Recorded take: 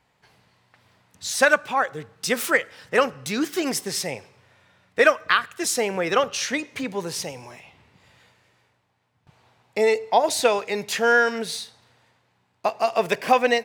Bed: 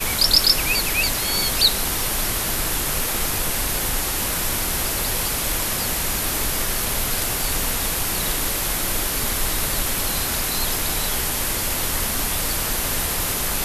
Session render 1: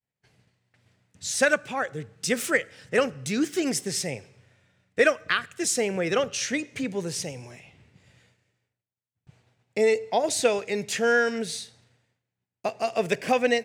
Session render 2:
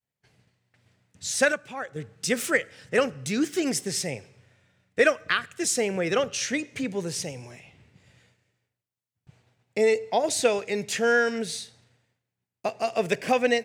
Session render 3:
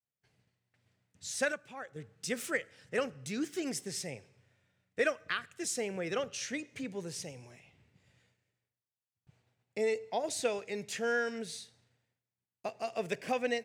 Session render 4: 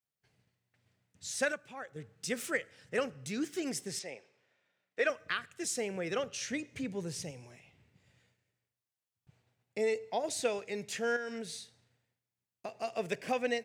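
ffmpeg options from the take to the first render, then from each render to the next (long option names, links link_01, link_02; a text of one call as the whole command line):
ffmpeg -i in.wav -af "equalizer=frequency=125:width_type=o:width=1:gain=4,equalizer=frequency=1000:width_type=o:width=1:gain=-11,equalizer=frequency=4000:width_type=o:width=1:gain=-4,equalizer=frequency=8000:width_type=o:width=1:gain=6,equalizer=frequency=16000:width_type=o:width=1:gain=-12,agate=range=-33dB:threshold=-55dB:ratio=3:detection=peak" out.wav
ffmpeg -i in.wav -filter_complex "[0:a]asplit=3[link_01][link_02][link_03];[link_01]atrim=end=1.522[link_04];[link_02]atrim=start=1.518:end=1.962,asetpts=PTS-STARTPTS,volume=-6dB[link_05];[link_03]atrim=start=1.958[link_06];[link_04][link_05]acrossfade=duration=0.004:curve1=hsin:curve2=hsin[link_07];[link_07][link_06]acrossfade=duration=0.004:curve1=hsin:curve2=hsin" out.wav
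ffmpeg -i in.wav -af "volume=-10dB" out.wav
ffmpeg -i in.wav -filter_complex "[0:a]asettb=1/sr,asplit=3[link_01][link_02][link_03];[link_01]atrim=end=3.994[link_04];[link_02]atrim=start=3.99:end=5.1,asetpts=PTS-STARTPTS,afade=type=in:duration=0.004:curve=qsin,afade=type=out:start_time=1.106:duration=0.004:curve=qsin,highpass=360,lowpass=5600[link_05];[link_03]atrim=start=5.096[link_06];[link_04][link_05]acrossfade=duration=0.004:curve1=hsin:curve2=qsin[link_07];[link_07][link_06]acrossfade=duration=0.004:curve1=qsin:curve2=hsin,asettb=1/sr,asplit=3[link_08][link_09][link_10];[link_08]atrim=end=6.474[link_11];[link_09]atrim=start=6.47:end=7.31,asetpts=PTS-STARTPTS,afade=type=in:duration=0.004:curve=qsin,afade=type=out:start_time=0.836:duration=0.004:curve=qsin,lowshelf=frequency=140:gain=10[link_12];[link_10]atrim=start=7.306[link_13];[link_11][link_12]acrossfade=duration=0.004:curve1=hsin:curve2=qsin[link_14];[link_14][link_13]acrossfade=duration=0.004:curve1=qsin:curve2=hsin,asettb=1/sr,asplit=3[link_15][link_16][link_17];[link_15]atrim=end=11.164[link_18];[link_16]atrim=start=11.16:end=12.76,asetpts=PTS-STARTPTS,afade=type=in:duration=0.004:curve=qsin,afade=type=out:start_time=1.596:duration=0.004:curve=qsin,acompressor=threshold=-35dB:ratio=6:attack=3.2:release=140:knee=1:detection=peak[link_19];[link_17]atrim=start=12.756[link_20];[link_18][link_19]acrossfade=duration=0.004:curve1=hsin:curve2=qsin[link_21];[link_21][link_20]acrossfade=duration=0.004:curve1=qsin:curve2=hsin" out.wav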